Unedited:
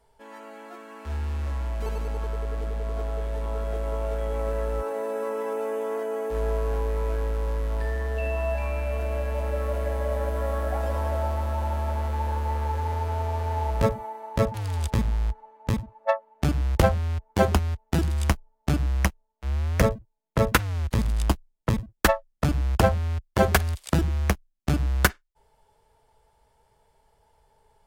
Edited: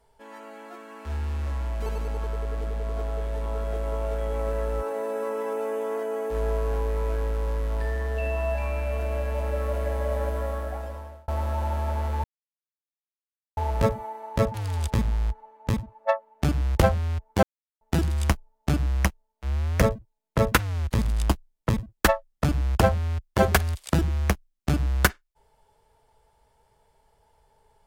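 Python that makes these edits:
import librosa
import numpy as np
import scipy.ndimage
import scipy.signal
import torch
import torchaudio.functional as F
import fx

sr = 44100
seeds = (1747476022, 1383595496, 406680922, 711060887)

y = fx.edit(x, sr, fx.fade_out_span(start_s=10.26, length_s=1.02),
    fx.silence(start_s=12.24, length_s=1.33),
    fx.silence(start_s=17.43, length_s=0.38), tone=tone)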